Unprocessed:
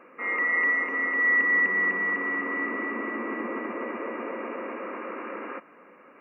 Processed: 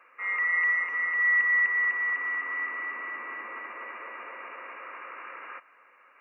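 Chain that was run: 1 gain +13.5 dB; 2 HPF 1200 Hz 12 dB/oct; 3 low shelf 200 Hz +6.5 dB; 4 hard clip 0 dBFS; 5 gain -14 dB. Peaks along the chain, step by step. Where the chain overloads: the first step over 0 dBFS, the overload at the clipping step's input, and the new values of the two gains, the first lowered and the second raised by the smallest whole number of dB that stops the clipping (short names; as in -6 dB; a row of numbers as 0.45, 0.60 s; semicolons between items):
-1.0, -2.5, -2.5, -2.5, -16.5 dBFS; no overload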